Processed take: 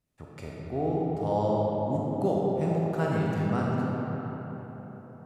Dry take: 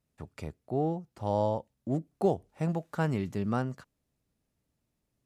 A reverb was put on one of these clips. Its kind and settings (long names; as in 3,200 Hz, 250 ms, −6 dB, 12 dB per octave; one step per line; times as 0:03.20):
comb and all-pass reverb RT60 4.4 s, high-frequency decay 0.5×, pre-delay 0 ms, DRR −4.5 dB
level −2 dB